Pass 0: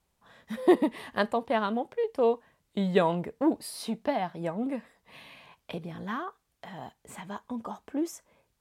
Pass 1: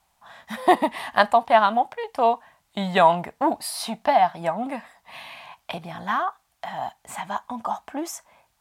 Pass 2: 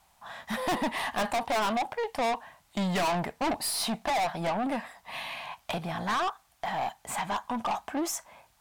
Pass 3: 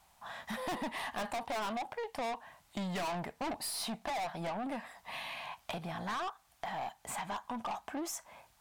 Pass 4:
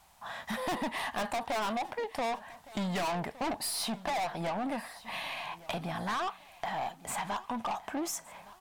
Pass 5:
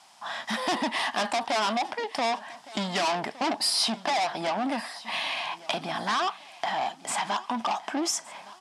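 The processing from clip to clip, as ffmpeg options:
-af "lowshelf=f=580:t=q:w=3:g=-7.5,volume=9dB"
-af "aeval=exprs='(tanh(28.2*val(0)+0.1)-tanh(0.1))/28.2':c=same,volume=3.5dB"
-af "acompressor=threshold=-40dB:ratio=2,volume=-1.5dB"
-af "aecho=1:1:1164|2328|3492:0.112|0.0415|0.0154,volume=4dB"
-af "highpass=f=160:w=0.5412,highpass=f=160:w=1.3066,equalizer=f=170:t=q:w=4:g=-9,equalizer=f=490:t=q:w=4:g=-6,equalizer=f=3.2k:t=q:w=4:g=4,equalizer=f=5.1k:t=q:w=4:g=8,lowpass=f=10k:w=0.5412,lowpass=f=10k:w=1.3066,volume=6.5dB"

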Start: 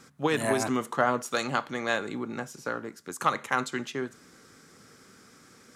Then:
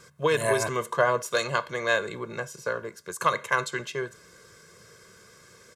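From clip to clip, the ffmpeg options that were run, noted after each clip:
-af "aecho=1:1:1.9:0.89"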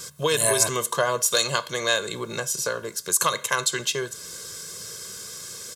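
-af "acompressor=threshold=-40dB:ratio=1.5,aexciter=amount=2.3:drive=8.6:freq=3k,volume=7dB"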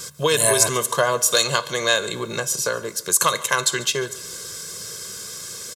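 -af "aecho=1:1:143|286|429|572:0.1|0.047|0.0221|0.0104,volume=3.5dB"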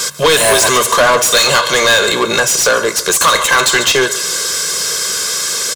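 -filter_complex "[0:a]asplit=2[a][b];[b]highpass=f=720:p=1,volume=28dB,asoftclip=type=tanh:threshold=-1.5dB[c];[a][c]amix=inputs=2:normalize=0,lowpass=f=5.4k:p=1,volume=-6dB,bandreject=f=60:t=h:w=6,bandreject=f=120:t=h:w=6"

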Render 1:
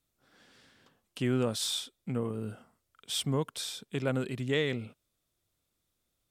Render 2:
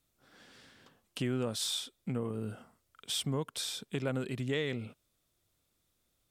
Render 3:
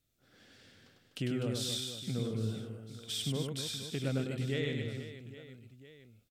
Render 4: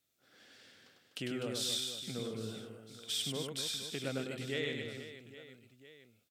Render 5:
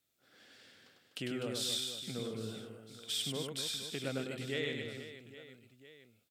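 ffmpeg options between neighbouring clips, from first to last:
-af "acompressor=threshold=-38dB:ratio=2,volume=3dB"
-af "equalizer=f=100:t=o:w=0.67:g=6,equalizer=f=1k:t=o:w=0.67:g=-10,equalizer=f=10k:t=o:w=0.67:g=-4,aecho=1:1:100|250|475|812.5|1319:0.631|0.398|0.251|0.158|0.1,volume=-2.5dB"
-af "highpass=f=460:p=1,volume=1.5dB"
-af "equalizer=f=6k:t=o:w=0.27:g=-2.5"

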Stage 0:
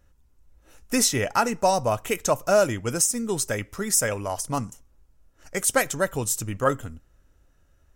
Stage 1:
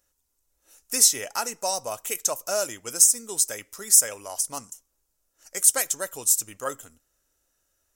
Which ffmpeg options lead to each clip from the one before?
-af "bass=f=250:g=-14,treble=f=4k:g=15,volume=-8dB"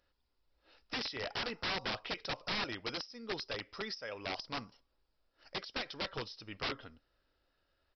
-af "acompressor=threshold=-25dB:ratio=4,aresample=11025,aeval=exprs='(mod(33.5*val(0)+1,2)-1)/33.5':c=same,aresample=44100"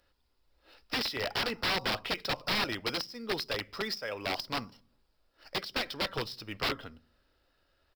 -filter_complex "[0:a]acrossover=split=320|2900[a][b][c];[a]aecho=1:1:76|152|228|304|380:0.141|0.0749|0.0397|0.021|0.0111[d];[c]acrusher=bits=2:mode=log:mix=0:aa=0.000001[e];[d][b][e]amix=inputs=3:normalize=0,volume=6dB"

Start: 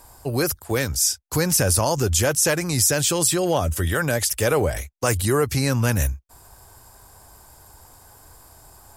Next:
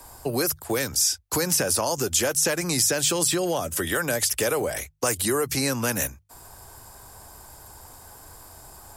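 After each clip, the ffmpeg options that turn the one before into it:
-filter_complex "[0:a]acrossover=split=200|1300|2100[a][b][c][d];[a]acompressor=threshold=-36dB:ratio=6[e];[e][b][c][d]amix=inputs=4:normalize=0,bandreject=f=50:t=h:w=6,bandreject=f=100:t=h:w=6,bandreject=f=150:t=h:w=6,acrossover=split=90|5300[f][g][h];[f]acompressor=threshold=-53dB:ratio=4[i];[g]acompressor=threshold=-26dB:ratio=4[j];[h]acompressor=threshold=-26dB:ratio=4[k];[i][j][k]amix=inputs=3:normalize=0,volume=3dB"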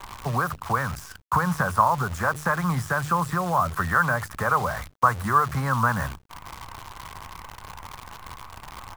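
-af "firequalizer=gain_entry='entry(180,0);entry(310,-20);entry(1100,10);entry(2800,-29)':delay=0.05:min_phase=1,acrusher=bits=8:dc=4:mix=0:aa=0.000001,volume=6.5dB"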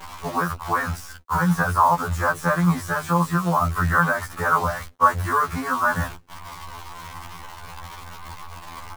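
-af "afftfilt=real='re*2*eq(mod(b,4),0)':imag='im*2*eq(mod(b,4),0)':win_size=2048:overlap=0.75,volume=4.5dB"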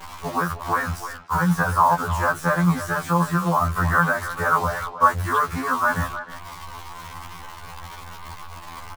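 -filter_complex "[0:a]asplit=2[a][b];[b]adelay=310,highpass=300,lowpass=3.4k,asoftclip=type=hard:threshold=-12.5dB,volume=-11dB[c];[a][c]amix=inputs=2:normalize=0"

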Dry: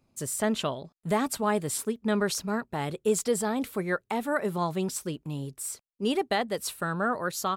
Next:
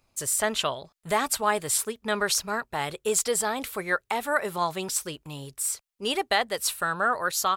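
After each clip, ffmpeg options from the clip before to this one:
-af "equalizer=f=210:w=0.54:g=-15,volume=7dB"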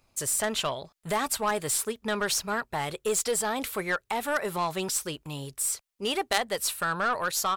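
-filter_complex "[0:a]asplit=2[a][b];[b]alimiter=limit=-18.5dB:level=0:latency=1:release=153,volume=2dB[c];[a][c]amix=inputs=2:normalize=0,aeval=exprs='0.531*(cos(1*acos(clip(val(0)/0.531,-1,1)))-cos(1*PI/2))+0.188*(cos(3*acos(clip(val(0)/0.531,-1,1)))-cos(3*PI/2))+0.00841*(cos(4*acos(clip(val(0)/0.531,-1,1)))-cos(4*PI/2))+0.0841*(cos(5*acos(clip(val(0)/0.531,-1,1)))-cos(5*PI/2))':c=same,volume=-2.5dB"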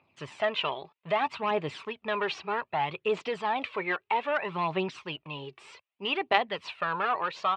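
-af "aphaser=in_gain=1:out_gain=1:delay=2.7:decay=0.47:speed=0.63:type=triangular,highpass=f=110:w=0.5412,highpass=f=110:w=1.3066,equalizer=f=120:t=q:w=4:g=-8,equalizer=f=220:t=q:w=4:g=-5,equalizer=f=500:t=q:w=4:g=-3,equalizer=f=990:t=q:w=4:g=5,equalizer=f=1.5k:t=q:w=4:g=-5,equalizer=f=2.6k:t=q:w=4:g=7,lowpass=f=3.2k:w=0.5412,lowpass=f=3.2k:w=1.3066,volume=-1dB"

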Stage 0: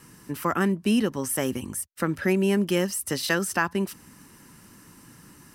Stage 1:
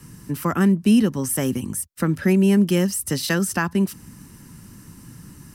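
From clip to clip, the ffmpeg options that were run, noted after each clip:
-filter_complex "[0:a]bass=f=250:g=13,treble=f=4k:g=4,acrossover=split=130|1200[a][b][c];[a]acompressor=threshold=-41dB:ratio=6[d];[d][b][c]amix=inputs=3:normalize=0"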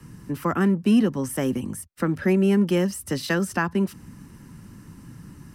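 -filter_complex "[0:a]highshelf=f=4.2k:g=-11,acrossover=split=190|3200[a][b][c];[a]asoftclip=type=tanh:threshold=-33dB[d];[d][b][c]amix=inputs=3:normalize=0"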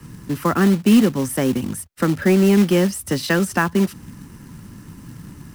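-af "acrusher=bits=4:mode=log:mix=0:aa=0.000001,volume=5dB"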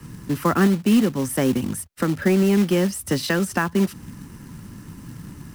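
-af "alimiter=limit=-10dB:level=0:latency=1:release=407"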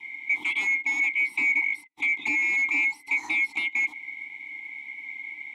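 -filter_complex "[0:a]afftfilt=real='real(if(lt(b,920),b+92*(1-2*mod(floor(b/92),2)),b),0)':imag='imag(if(lt(b,920),b+92*(1-2*mod(floor(b/92),2)),b),0)':win_size=2048:overlap=0.75,aeval=exprs='0.447*sin(PI/2*3.16*val(0)/0.447)':c=same,asplit=3[a][b][c];[a]bandpass=f=300:t=q:w=8,volume=0dB[d];[b]bandpass=f=870:t=q:w=8,volume=-6dB[e];[c]bandpass=f=2.24k:t=q:w=8,volume=-9dB[f];[d][e][f]amix=inputs=3:normalize=0,volume=-2.5dB"

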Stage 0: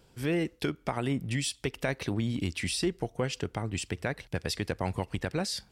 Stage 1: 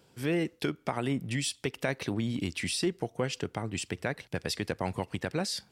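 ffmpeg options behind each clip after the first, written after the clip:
-af "highpass=110"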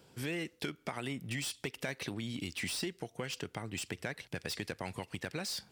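-filter_complex "[0:a]acrossover=split=1700[a][b];[a]acompressor=threshold=-39dB:ratio=4[c];[b]asoftclip=type=tanh:threshold=-36dB[d];[c][d]amix=inputs=2:normalize=0,volume=1dB"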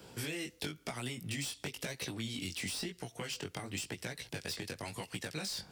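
-filter_complex "[0:a]acrossover=split=130|970|3600[a][b][c][d];[a]acompressor=threshold=-58dB:ratio=4[e];[b]acompressor=threshold=-51dB:ratio=4[f];[c]acompressor=threshold=-56dB:ratio=4[g];[d]acompressor=threshold=-49dB:ratio=4[h];[e][f][g][h]amix=inputs=4:normalize=0,flanger=delay=16:depth=5.8:speed=0.98,volume=11dB"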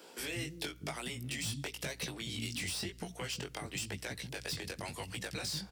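-filter_complex "[0:a]aeval=exprs='val(0)+0.00158*(sin(2*PI*60*n/s)+sin(2*PI*2*60*n/s)/2+sin(2*PI*3*60*n/s)/3+sin(2*PI*4*60*n/s)/4+sin(2*PI*5*60*n/s)/5)':c=same,acrossover=split=270[a][b];[a]adelay=190[c];[c][b]amix=inputs=2:normalize=0,volume=1dB"

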